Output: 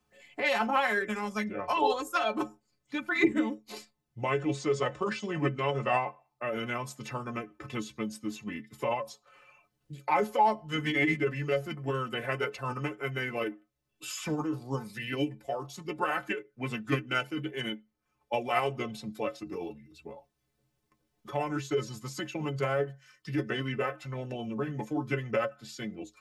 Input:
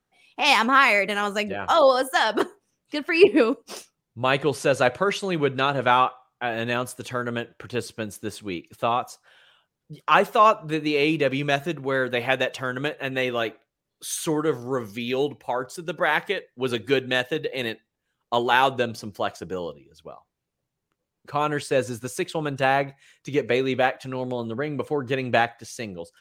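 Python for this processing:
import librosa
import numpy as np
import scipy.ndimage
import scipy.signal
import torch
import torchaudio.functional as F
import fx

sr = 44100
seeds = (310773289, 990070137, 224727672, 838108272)

y = fx.stiff_resonator(x, sr, f0_hz=64.0, decay_s=0.31, stiffness=0.03)
y = fx.formant_shift(y, sr, semitones=-4)
y = fx.band_squash(y, sr, depth_pct=40)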